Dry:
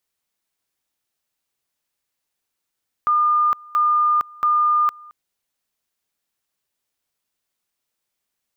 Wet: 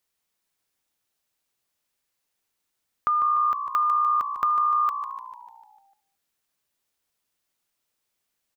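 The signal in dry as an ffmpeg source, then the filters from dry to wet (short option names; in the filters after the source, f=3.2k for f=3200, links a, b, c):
-f lavfi -i "aevalsrc='pow(10,(-14-25*gte(mod(t,0.68),0.46))/20)*sin(2*PI*1210*t)':d=2.04:s=44100"
-filter_complex "[0:a]acompressor=threshold=-21dB:ratio=6,asplit=2[a][b];[b]asplit=7[c][d][e][f][g][h][i];[c]adelay=149,afreqshift=-60,volume=-9.5dB[j];[d]adelay=298,afreqshift=-120,volume=-14.5dB[k];[e]adelay=447,afreqshift=-180,volume=-19.6dB[l];[f]adelay=596,afreqshift=-240,volume=-24.6dB[m];[g]adelay=745,afreqshift=-300,volume=-29.6dB[n];[h]adelay=894,afreqshift=-360,volume=-34.7dB[o];[i]adelay=1043,afreqshift=-420,volume=-39.7dB[p];[j][k][l][m][n][o][p]amix=inputs=7:normalize=0[q];[a][q]amix=inputs=2:normalize=0"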